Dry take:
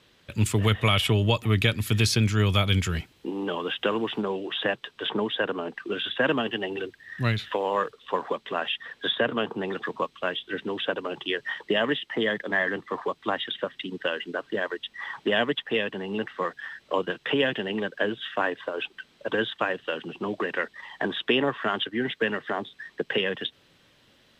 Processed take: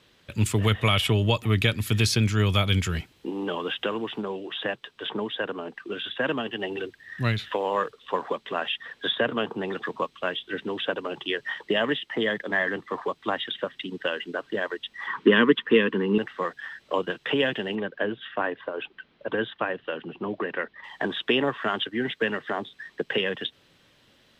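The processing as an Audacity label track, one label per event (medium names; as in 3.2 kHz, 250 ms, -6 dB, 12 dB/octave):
3.850000	6.590000	gain -3 dB
15.070000	16.180000	FFT filter 120 Hz 0 dB, 220 Hz +11 dB, 470 Hz +8 dB, 700 Hz -15 dB, 1 kHz +9 dB, 3.1 kHz +1 dB, 9.4 kHz -9 dB
17.750000	20.840000	distance through air 280 m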